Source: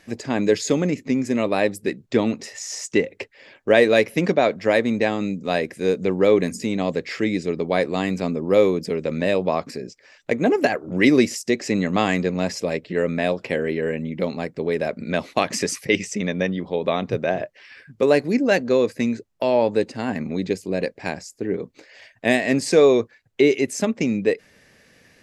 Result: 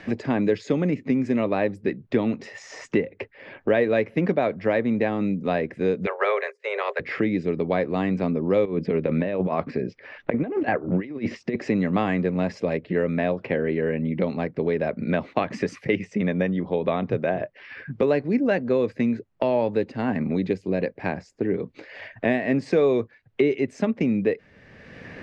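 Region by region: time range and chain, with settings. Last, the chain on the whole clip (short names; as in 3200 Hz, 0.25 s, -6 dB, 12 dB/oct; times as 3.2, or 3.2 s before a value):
6.05–6.99 spectral limiter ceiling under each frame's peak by 20 dB + expander -23 dBFS + rippled Chebyshev high-pass 390 Hz, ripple 6 dB
8.65–11.56 LPF 3300 Hz + negative-ratio compressor -23 dBFS, ratio -0.5
whole clip: LPF 2400 Hz 12 dB/oct; bell 110 Hz +3.5 dB 2.3 oct; three-band squash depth 70%; gain -3 dB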